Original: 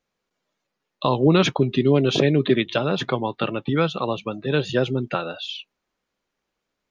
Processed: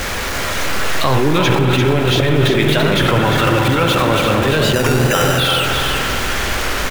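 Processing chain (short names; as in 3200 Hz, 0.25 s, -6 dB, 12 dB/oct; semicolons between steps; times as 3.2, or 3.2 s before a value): zero-crossing step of -24 dBFS; bell 1700 Hz +5 dB 1 oct; spring tank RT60 3.9 s, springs 47 ms, chirp 70 ms, DRR 4 dB; in parallel at +3 dB: negative-ratio compressor -21 dBFS, ratio -1; on the sum: resonant low shelf 120 Hz +8 dB, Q 1.5; on a send: echo 0.343 s -5.5 dB; 4.74–5.38 on the sum: sample-rate reducer 4400 Hz, jitter 0%; record warp 33 1/3 rpm, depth 100 cents; gain -3 dB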